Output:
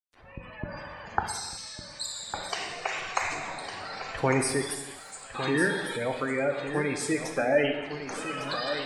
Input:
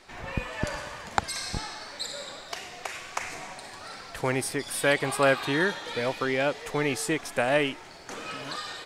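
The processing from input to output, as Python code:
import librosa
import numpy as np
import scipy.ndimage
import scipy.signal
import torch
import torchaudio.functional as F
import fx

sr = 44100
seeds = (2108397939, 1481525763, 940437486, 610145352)

y = fx.fade_in_head(x, sr, length_s=2.36)
y = fx.differentiator(y, sr, at=(1.28, 2.34))
y = fx.bandpass_q(y, sr, hz=7100.0, q=6.2, at=(4.73, 5.34), fade=0.02)
y = fx.rider(y, sr, range_db=4, speed_s=2.0)
y = fx.quant_companded(y, sr, bits=4)
y = fx.spec_gate(y, sr, threshold_db=-15, keep='strong')
y = fx.wow_flutter(y, sr, seeds[0], rate_hz=2.1, depth_cents=29.0)
y = fx.echo_feedback(y, sr, ms=1155, feedback_pct=17, wet_db=-9.5)
y = fx.rev_gated(y, sr, seeds[1], gate_ms=400, shape='falling', drr_db=4.0)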